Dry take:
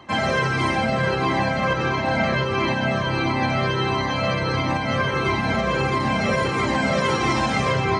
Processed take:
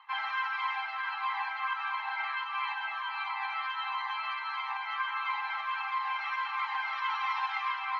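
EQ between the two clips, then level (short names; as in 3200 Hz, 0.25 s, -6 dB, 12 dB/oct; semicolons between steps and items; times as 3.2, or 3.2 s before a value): rippled Chebyshev high-pass 820 Hz, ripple 3 dB; Bessel low-pass 6700 Hz; air absorption 340 m; -3.5 dB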